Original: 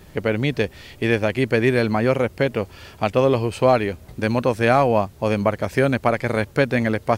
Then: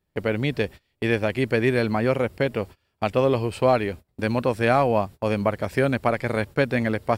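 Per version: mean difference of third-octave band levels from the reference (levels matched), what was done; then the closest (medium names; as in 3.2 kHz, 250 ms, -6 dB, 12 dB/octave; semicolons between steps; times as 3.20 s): 2.0 dB: band-stop 6.3 kHz, Q 8.4; gate -32 dBFS, range -28 dB; trim -3 dB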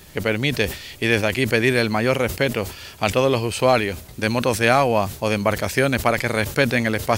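5.5 dB: treble shelf 2.1 kHz +11.5 dB; decay stretcher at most 120 dB/s; trim -2 dB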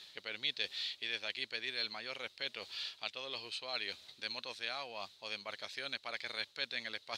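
10.0 dB: reverse; compression 6:1, threshold -26 dBFS, peak gain reduction 14.5 dB; reverse; band-pass filter 3.9 kHz, Q 5.6; trim +13 dB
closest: first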